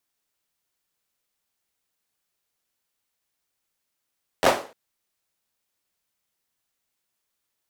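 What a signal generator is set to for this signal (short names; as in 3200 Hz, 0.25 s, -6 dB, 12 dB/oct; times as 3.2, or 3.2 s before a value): hand clap length 0.30 s, apart 11 ms, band 540 Hz, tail 0.38 s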